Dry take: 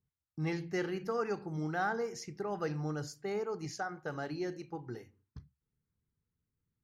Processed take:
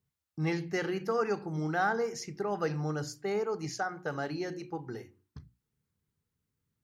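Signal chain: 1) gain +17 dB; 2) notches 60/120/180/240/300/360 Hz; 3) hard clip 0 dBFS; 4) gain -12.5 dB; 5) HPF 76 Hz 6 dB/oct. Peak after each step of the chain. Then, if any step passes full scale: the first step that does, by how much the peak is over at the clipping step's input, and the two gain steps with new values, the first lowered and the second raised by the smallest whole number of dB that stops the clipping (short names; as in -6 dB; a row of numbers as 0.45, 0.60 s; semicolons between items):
-5.5, -5.0, -5.0, -17.5, -17.5 dBFS; no overload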